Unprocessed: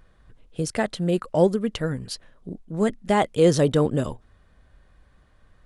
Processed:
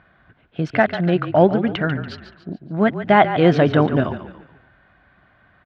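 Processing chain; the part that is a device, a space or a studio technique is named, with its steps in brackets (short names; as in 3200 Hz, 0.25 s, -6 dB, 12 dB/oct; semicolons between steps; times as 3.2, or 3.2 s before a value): frequency-shifting delay pedal into a guitar cabinet (frequency-shifting echo 0.143 s, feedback 43%, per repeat -33 Hz, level -11 dB; speaker cabinet 110–3400 Hz, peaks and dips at 480 Hz -8 dB, 700 Hz +7 dB, 1500 Hz +8 dB, 2200 Hz +4 dB); gain +5.5 dB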